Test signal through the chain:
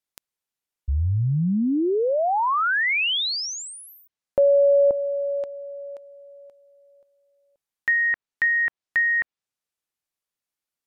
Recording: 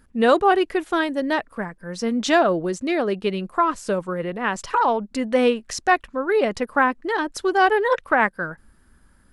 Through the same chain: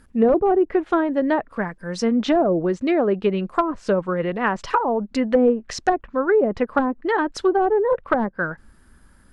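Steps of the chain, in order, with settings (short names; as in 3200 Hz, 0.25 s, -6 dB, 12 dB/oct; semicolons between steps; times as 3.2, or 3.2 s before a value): wavefolder -10.5 dBFS; treble ducked by the level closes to 550 Hz, closed at -15.5 dBFS; gain +3.5 dB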